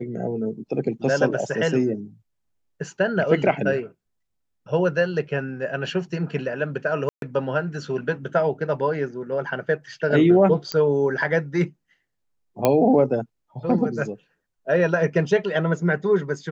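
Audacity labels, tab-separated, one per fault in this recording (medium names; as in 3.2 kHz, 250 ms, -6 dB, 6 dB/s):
7.090000	7.220000	dropout 132 ms
10.720000	10.720000	pop -12 dBFS
12.650000	12.650000	pop -5 dBFS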